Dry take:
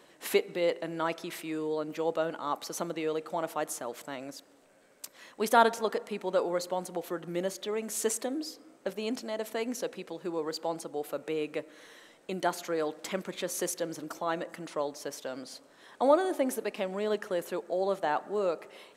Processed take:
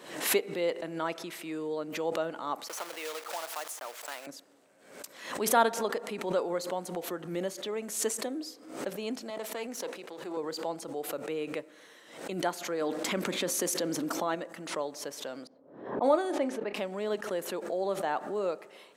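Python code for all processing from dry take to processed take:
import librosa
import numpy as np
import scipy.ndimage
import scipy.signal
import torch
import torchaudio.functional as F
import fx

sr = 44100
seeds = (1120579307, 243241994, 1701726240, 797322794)

y = fx.chain(x, sr, fx.block_float(bits=3),
    fx.highpass(hz=750.0, slope=12),
    fx.band_squash(depth_pct=70), at=(2.68, 4.27))
y = fx.chain(y, sr, fx.halfwave_gain(db=-7.0),
    fx.highpass(hz=250.0, slope=12),
    fx.sustainer(db_per_s=85.0), at=(9.3, 10.37))
y = fx.chain(y, sr, fx.peak_eq(hz=260.0, db=7.0, octaves=0.42),
    fx.env_flatten(amount_pct=70), at=(12.81, 14.35))
y = fx.chain(y, sr, fx.env_lowpass(base_hz=450.0, full_db=-22.0),
    fx.doubler(ms=30.0, db=-13.5), at=(15.47, 16.74))
y = scipy.signal.sosfilt(scipy.signal.butter(2, 110.0, 'highpass', fs=sr, output='sos'), y)
y = fx.pre_swell(y, sr, db_per_s=84.0)
y = y * librosa.db_to_amplitude(-2.0)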